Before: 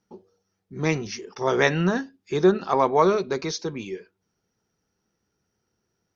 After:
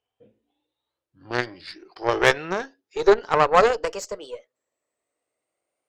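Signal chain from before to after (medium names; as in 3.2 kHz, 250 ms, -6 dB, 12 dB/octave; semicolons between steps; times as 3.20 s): gliding tape speed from 52% -> 157%; resonant low shelf 300 Hz -12.5 dB, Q 1.5; Chebyshev shaper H 4 -17 dB, 7 -22 dB, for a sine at -3.5 dBFS; trim +2 dB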